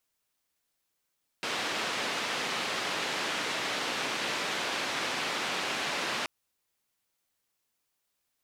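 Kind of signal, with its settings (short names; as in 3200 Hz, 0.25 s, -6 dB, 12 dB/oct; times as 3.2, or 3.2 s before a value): noise band 210–3300 Hz, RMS -32.5 dBFS 4.83 s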